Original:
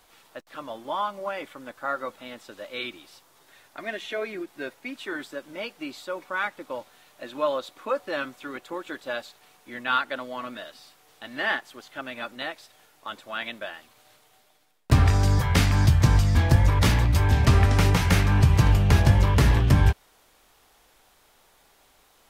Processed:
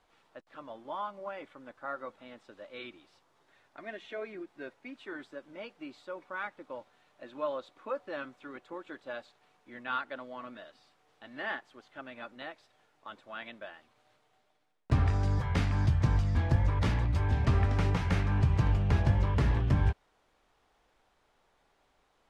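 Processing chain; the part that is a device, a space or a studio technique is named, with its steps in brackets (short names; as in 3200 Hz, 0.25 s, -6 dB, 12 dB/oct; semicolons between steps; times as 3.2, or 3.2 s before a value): through cloth (LPF 8900 Hz 12 dB/oct; high shelf 3500 Hz -12 dB); gain -8 dB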